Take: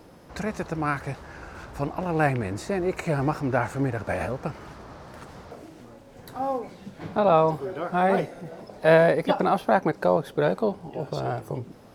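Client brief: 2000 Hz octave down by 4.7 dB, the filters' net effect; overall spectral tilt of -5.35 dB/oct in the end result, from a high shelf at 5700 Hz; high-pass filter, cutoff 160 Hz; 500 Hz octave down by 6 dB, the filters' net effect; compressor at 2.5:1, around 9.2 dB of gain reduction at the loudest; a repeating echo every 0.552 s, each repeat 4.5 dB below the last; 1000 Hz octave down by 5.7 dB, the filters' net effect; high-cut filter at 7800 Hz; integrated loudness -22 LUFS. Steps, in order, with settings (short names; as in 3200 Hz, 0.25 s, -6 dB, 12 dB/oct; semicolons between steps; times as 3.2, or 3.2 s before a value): HPF 160 Hz; LPF 7800 Hz; bell 500 Hz -6 dB; bell 1000 Hz -4.5 dB; bell 2000 Hz -4.5 dB; high shelf 5700 Hz +5.5 dB; compressor 2.5:1, threshold -32 dBFS; feedback echo 0.552 s, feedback 60%, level -4.5 dB; gain +13 dB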